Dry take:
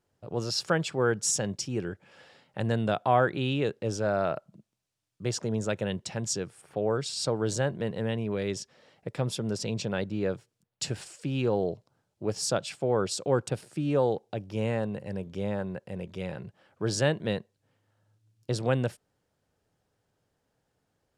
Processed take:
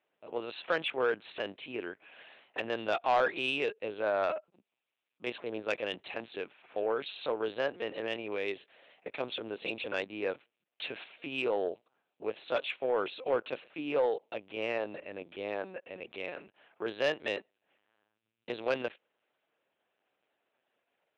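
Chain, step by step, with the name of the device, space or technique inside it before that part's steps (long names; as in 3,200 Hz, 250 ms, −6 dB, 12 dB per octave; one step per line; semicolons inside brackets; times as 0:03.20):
talking toy (linear-prediction vocoder at 8 kHz pitch kept; high-pass filter 430 Hz 12 dB per octave; parametric band 2,500 Hz +8 dB 0.52 octaves; soft clipping −18.5 dBFS, distortion −17 dB)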